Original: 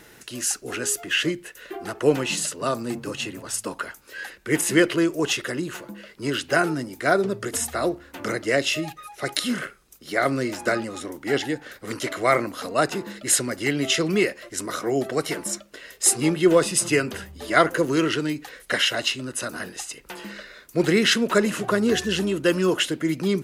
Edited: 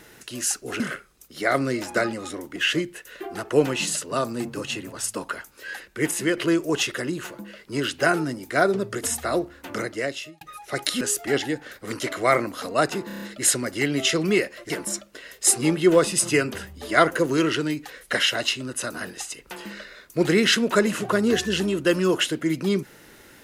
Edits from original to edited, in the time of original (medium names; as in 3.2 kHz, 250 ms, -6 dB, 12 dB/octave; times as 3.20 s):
0.80–1.06 s: swap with 9.51–11.27 s
4.35–4.87 s: fade out, to -7 dB
8.18–8.91 s: fade out
13.07 s: stutter 0.03 s, 6 plays
14.55–15.29 s: delete